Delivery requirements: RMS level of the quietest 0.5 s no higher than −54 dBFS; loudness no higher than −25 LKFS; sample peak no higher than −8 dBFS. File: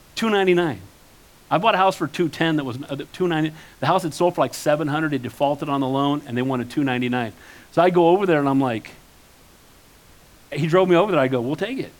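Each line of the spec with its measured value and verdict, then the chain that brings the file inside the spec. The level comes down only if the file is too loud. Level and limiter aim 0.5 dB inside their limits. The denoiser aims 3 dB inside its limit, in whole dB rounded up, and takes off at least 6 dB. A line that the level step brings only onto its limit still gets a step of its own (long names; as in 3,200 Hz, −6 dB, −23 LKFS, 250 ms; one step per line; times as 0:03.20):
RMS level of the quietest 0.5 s −50 dBFS: out of spec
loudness −21.0 LKFS: out of spec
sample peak −4.5 dBFS: out of spec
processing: level −4.5 dB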